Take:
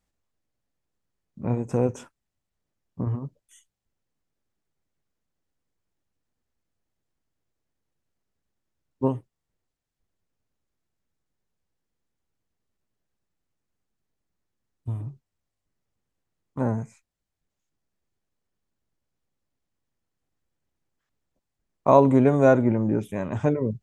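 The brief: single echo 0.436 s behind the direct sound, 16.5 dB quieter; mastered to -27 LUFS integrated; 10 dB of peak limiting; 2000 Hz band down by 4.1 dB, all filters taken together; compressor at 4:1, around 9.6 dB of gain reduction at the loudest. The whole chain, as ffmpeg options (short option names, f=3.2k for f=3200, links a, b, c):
-af "equalizer=f=2k:t=o:g=-7,acompressor=threshold=-23dB:ratio=4,alimiter=limit=-21dB:level=0:latency=1,aecho=1:1:436:0.15,volume=6dB"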